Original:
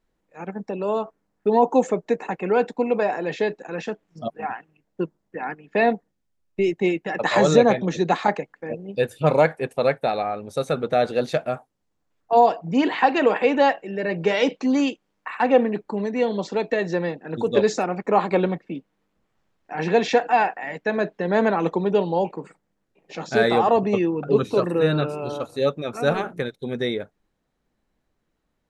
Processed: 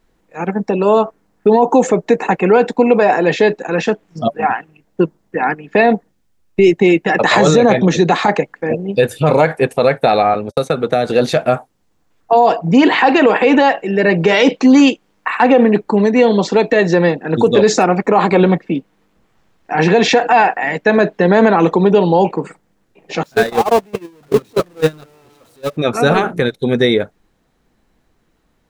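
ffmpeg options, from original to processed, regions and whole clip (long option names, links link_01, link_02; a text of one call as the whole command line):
ffmpeg -i in.wav -filter_complex "[0:a]asettb=1/sr,asplit=3[link_01][link_02][link_03];[link_01]atrim=end=10.344[link_04];[link_02]atrim=start=10.34:end=11.1,asetpts=PTS-STARTPTS,afade=type=in:duration=0.004:curve=qsin,afade=type=out:start_time=0.756:duration=0.004:curve=qsin,agate=range=-50dB:threshold=-38dB:ratio=16:release=100:detection=peak,acrossover=split=270|6300[link_05][link_06][link_07];[link_05]acompressor=threshold=-38dB:ratio=4[link_08];[link_06]acompressor=threshold=-27dB:ratio=4[link_09];[link_07]acompressor=threshold=-55dB:ratio=4[link_10];[link_08][link_09][link_10]amix=inputs=3:normalize=0[link_11];[link_03]atrim=start=11.096[link_12];[link_04][link_11]acrossfade=duration=0.004:curve1=hsin:curve2=qsin[link_13];[link_13][link_12]acrossfade=duration=0.004:curve1=qsin:curve2=hsin,asettb=1/sr,asplit=3[link_14][link_15][link_16];[link_14]atrim=end=23.234[link_17];[link_15]atrim=start=23.23:end=25.77,asetpts=PTS-STARTPTS,afade=type=in:duration=0.004:curve=qsin,afade=type=out:start_time=2.536:duration=0.004:curve=qsin,aeval=exprs='val(0)+0.5*0.1*sgn(val(0))':channel_layout=same,agate=range=-39dB:threshold=-14dB:ratio=16:release=100:detection=peak[link_18];[link_16]atrim=start=25.766[link_19];[link_17][link_18]acrossfade=duration=0.004:curve1=hsin:curve2=qsin[link_20];[link_20][link_19]acrossfade=duration=0.004:curve1=qsin:curve2=hsin,bandreject=frequency=580:width=17,alimiter=level_in=14.5dB:limit=-1dB:release=50:level=0:latency=1,volume=-1dB" out.wav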